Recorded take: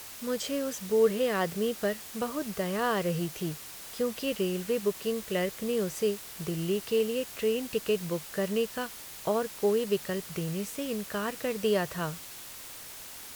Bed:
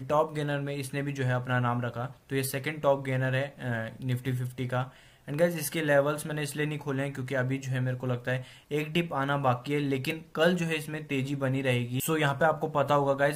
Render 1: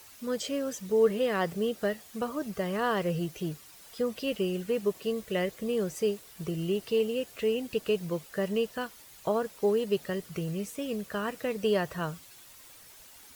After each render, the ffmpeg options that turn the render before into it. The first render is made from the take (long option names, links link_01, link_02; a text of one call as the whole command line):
ffmpeg -i in.wav -af "afftdn=noise_reduction=10:noise_floor=-45" out.wav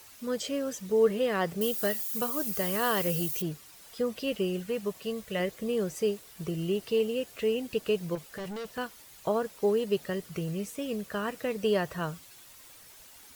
ffmpeg -i in.wav -filter_complex "[0:a]asettb=1/sr,asplit=3[link_01][link_02][link_03];[link_01]atrim=end=1.614[link_04];[link_02]atrim=start=1.61:end=3.42,asetpts=PTS-STARTPTS,afade=type=in:duration=0.004:curve=qsin,afade=type=out:start_time=1.806:duration=0.004:curve=qsin,aemphasis=mode=production:type=75fm[link_05];[link_03]atrim=start=3.416[link_06];[link_04][link_05]acrossfade=duration=0.004:curve1=hsin:curve2=qsin[link_07];[link_07][link_06]acrossfade=duration=0.004:curve1=qsin:curve2=hsin,asettb=1/sr,asplit=3[link_08][link_09][link_10];[link_08]atrim=end=4.594[link_11];[link_09]atrim=start=4.59:end=5.4,asetpts=PTS-STARTPTS,afade=type=in:duration=0.004:curve=qsin,afade=type=out:start_time=0.806:duration=0.004:curve=qsin,equalizer=frequency=350:width_type=o:width=0.77:gain=-7[link_12];[link_10]atrim=start=5.396[link_13];[link_11][link_12]acrossfade=duration=0.004:curve1=hsin:curve2=qsin[link_14];[link_14][link_13]acrossfade=duration=0.004:curve1=qsin:curve2=hsin,asettb=1/sr,asplit=3[link_15][link_16][link_17];[link_15]atrim=end=8.154[link_18];[link_16]atrim=start=8.15:end=8.78,asetpts=PTS-STARTPTS,afade=type=in:duration=0.004:curve=qsin,afade=type=out:start_time=0.626:duration=0.004:curve=qsin,asoftclip=type=hard:threshold=-35.5dB[link_19];[link_17]atrim=start=8.776[link_20];[link_18][link_19]acrossfade=duration=0.004:curve1=hsin:curve2=qsin[link_21];[link_21][link_20]acrossfade=duration=0.004:curve1=qsin:curve2=hsin" out.wav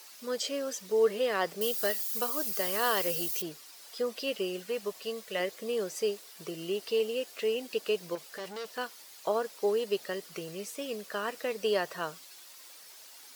ffmpeg -i in.wav -af "highpass=370,equalizer=frequency=4800:width_type=o:width=0.68:gain=5.5" out.wav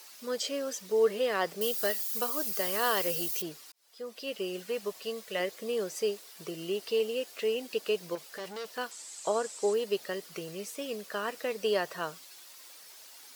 ffmpeg -i in.wav -filter_complex "[0:a]asettb=1/sr,asplit=3[link_01][link_02][link_03];[link_01]atrim=end=8.914[link_04];[link_02]atrim=start=8.91:end=9.74,asetpts=PTS-STARTPTS,afade=type=in:duration=0.004:curve=qsin,afade=type=out:start_time=0.826:duration=0.004:curve=qsin,lowpass=frequency=7800:width_type=q:width=7.2[link_05];[link_03]atrim=start=9.736[link_06];[link_04][link_05]acrossfade=duration=0.004:curve1=hsin:curve2=qsin[link_07];[link_07][link_06]acrossfade=duration=0.004:curve1=qsin:curve2=hsin,asplit=2[link_08][link_09];[link_08]atrim=end=3.72,asetpts=PTS-STARTPTS,afade=type=out:start_time=3.716:duration=0.004:curve=hsin[link_10];[link_09]atrim=start=3.72,asetpts=PTS-STARTPTS,afade=type=in:duration=0.89[link_11];[link_10][link_11]concat=n=2:v=0:a=1" out.wav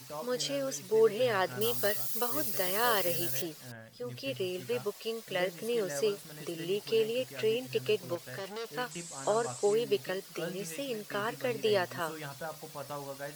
ffmpeg -i in.wav -i bed.wav -filter_complex "[1:a]volume=-16dB[link_01];[0:a][link_01]amix=inputs=2:normalize=0" out.wav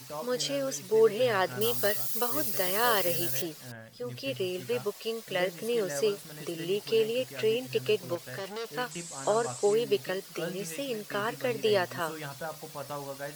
ffmpeg -i in.wav -af "volume=2.5dB" out.wav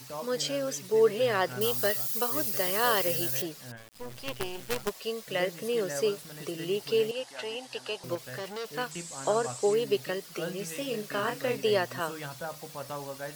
ffmpeg -i in.wav -filter_complex "[0:a]asplit=3[link_01][link_02][link_03];[link_01]afade=type=out:start_time=3.76:duration=0.02[link_04];[link_02]acrusher=bits=5:dc=4:mix=0:aa=0.000001,afade=type=in:start_time=3.76:duration=0.02,afade=type=out:start_time=4.88:duration=0.02[link_05];[link_03]afade=type=in:start_time=4.88:duration=0.02[link_06];[link_04][link_05][link_06]amix=inputs=3:normalize=0,asettb=1/sr,asplit=3[link_07][link_08][link_09];[link_07]atrim=end=7.114[link_10];[link_08]atrim=start=7.11:end=8.04,asetpts=PTS-STARTPTS,afade=type=in:duration=0.004:curve=qsin,afade=type=out:start_time=0.926:duration=0.004:curve=qsin,highpass=400,equalizer=frequency=440:width_type=q:width=4:gain=-10,equalizer=frequency=850:width_type=q:width=4:gain=9,equalizer=frequency=2400:width_type=q:width=4:gain=-5,equalizer=frequency=7200:width_type=q:width=4:gain=-3,lowpass=frequency=10000:width=0.5412,lowpass=frequency=10000:width=1.3066[link_11];[link_09]atrim=start=8.036[link_12];[link_10][link_11]acrossfade=duration=0.004:curve1=hsin:curve2=qsin[link_13];[link_13][link_12]acrossfade=duration=0.004:curve1=qsin:curve2=hsin,asettb=1/sr,asplit=3[link_14][link_15][link_16];[link_14]atrim=end=10.724[link_17];[link_15]atrim=start=10.72:end=11.57,asetpts=PTS-STARTPTS,afade=type=in:duration=0.004:curve=qsin,afade=type=out:start_time=0.846:duration=0.004:curve=qsin,asplit=2[link_18][link_19];[link_19]adelay=33,volume=-5.5dB[link_20];[link_18][link_20]amix=inputs=2:normalize=0,atrim=end_sample=37485[link_21];[link_16]atrim=start=11.566[link_22];[link_17][link_21]acrossfade=duration=0.004:curve1=hsin:curve2=qsin[link_23];[link_23][link_22]acrossfade=duration=0.004:curve1=qsin:curve2=hsin" out.wav